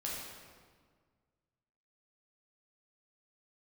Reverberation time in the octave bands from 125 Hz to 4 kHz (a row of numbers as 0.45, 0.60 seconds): 2.2, 2.0, 1.7, 1.6, 1.4, 1.2 seconds